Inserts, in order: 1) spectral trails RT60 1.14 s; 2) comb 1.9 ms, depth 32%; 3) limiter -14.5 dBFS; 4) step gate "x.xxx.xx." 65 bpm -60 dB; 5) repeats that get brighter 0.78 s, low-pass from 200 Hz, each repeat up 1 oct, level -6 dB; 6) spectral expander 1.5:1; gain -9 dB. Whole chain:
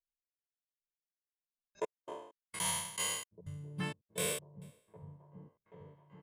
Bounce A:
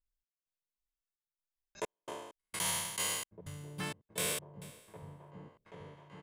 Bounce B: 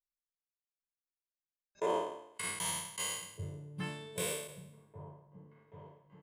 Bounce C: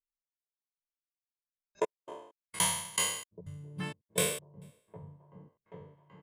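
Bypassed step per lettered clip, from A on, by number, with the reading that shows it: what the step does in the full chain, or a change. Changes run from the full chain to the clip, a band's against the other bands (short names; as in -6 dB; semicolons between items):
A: 6, momentary loudness spread change -3 LU; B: 4, momentary loudness spread change -2 LU; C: 3, crest factor change +4.0 dB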